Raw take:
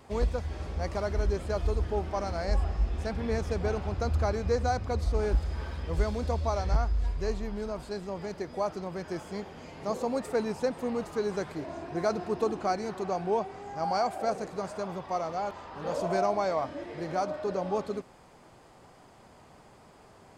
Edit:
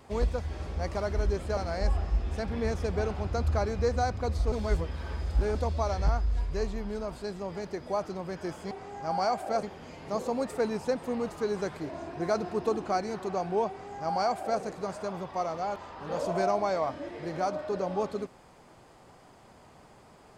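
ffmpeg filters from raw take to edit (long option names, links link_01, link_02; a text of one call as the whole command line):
ffmpeg -i in.wav -filter_complex "[0:a]asplit=6[link_01][link_02][link_03][link_04][link_05][link_06];[link_01]atrim=end=1.572[link_07];[link_02]atrim=start=2.238:end=5.192[link_08];[link_03]atrim=start=5.188:end=6.222,asetpts=PTS-STARTPTS,areverse[link_09];[link_04]atrim=start=6.218:end=9.382[link_10];[link_05]atrim=start=13.438:end=14.362[link_11];[link_06]atrim=start=9.378[link_12];[link_07][link_08]acrossfade=duration=0.004:curve1=hsin:curve2=hsin[link_13];[link_13][link_09]acrossfade=duration=0.004:curve1=hsin:curve2=hsin[link_14];[link_14][link_10]acrossfade=duration=0.004:curve1=hsin:curve2=hsin[link_15];[link_15][link_11]acrossfade=duration=0.004:curve1=hsin:curve2=hsin[link_16];[link_16][link_12]acrossfade=duration=0.004:curve1=hsin:curve2=hsin" out.wav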